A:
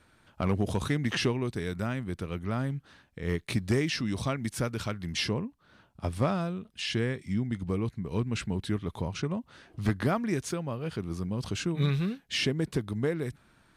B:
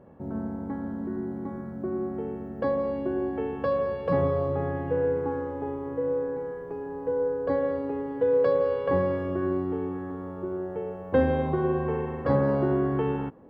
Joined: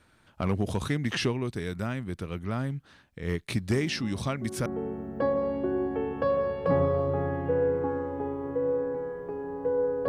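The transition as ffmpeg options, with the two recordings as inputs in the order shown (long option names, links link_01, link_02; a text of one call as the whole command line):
ffmpeg -i cue0.wav -i cue1.wav -filter_complex "[1:a]asplit=2[link_01][link_02];[0:a]apad=whole_dur=10.08,atrim=end=10.08,atrim=end=4.662[link_03];[link_02]atrim=start=2.078:end=7.5[link_04];[link_01]atrim=start=1.14:end=2.08,asetpts=PTS-STARTPTS,volume=-9.5dB,afade=type=in:duration=0.004:curve=hsin,afade=type=out:start_time=0.936:duration=0.004:curve=hsin,adelay=3720[link_05];[link_03][link_04]acrossfade=duration=0.004:curve1=hsin:curve2=hsin[link_06];[link_06][link_05]amix=inputs=2:normalize=0" out.wav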